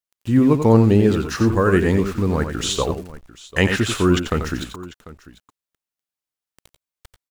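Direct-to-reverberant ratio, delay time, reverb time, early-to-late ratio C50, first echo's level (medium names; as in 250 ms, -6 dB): no reverb, 89 ms, no reverb, no reverb, -8.0 dB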